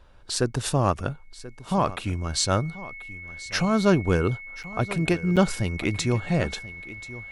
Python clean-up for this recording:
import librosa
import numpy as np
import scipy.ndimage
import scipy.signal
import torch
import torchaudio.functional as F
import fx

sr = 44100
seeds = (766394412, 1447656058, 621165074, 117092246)

y = fx.notch(x, sr, hz=2200.0, q=30.0)
y = fx.fix_interpolate(y, sr, at_s=(4.63, 5.36), length_ms=7.4)
y = fx.fix_echo_inverse(y, sr, delay_ms=1034, level_db=-17.0)